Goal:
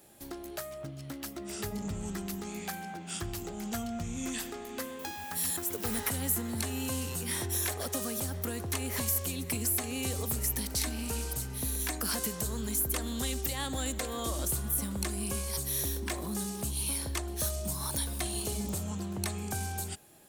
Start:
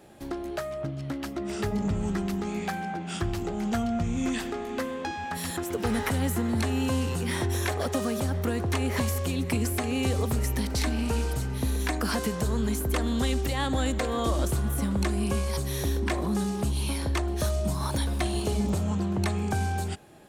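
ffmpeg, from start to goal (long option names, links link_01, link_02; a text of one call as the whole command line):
ffmpeg -i in.wav -filter_complex "[0:a]asettb=1/sr,asplit=3[link_01][link_02][link_03];[link_01]atrim=end=4.994[link_04];[link_02]atrim=start=4.99:end=6,asetpts=PTS-STARTPTS,afade=type=in:duration=0.004:curve=qsin,afade=type=out:start_time=1.006:duration=0.004:curve=qsin,acrusher=bits=5:mode=log:mix=0:aa=0.000001[link_05];[link_03]atrim=start=5.996[link_06];[link_04][link_05]acrossfade=duration=0.004:curve1=hsin:curve2=qsin[link_07];[link_07][link_06]acrossfade=duration=0.004:curve1=qsin:curve2=hsin,aemphasis=mode=production:type=75fm,volume=-8dB" out.wav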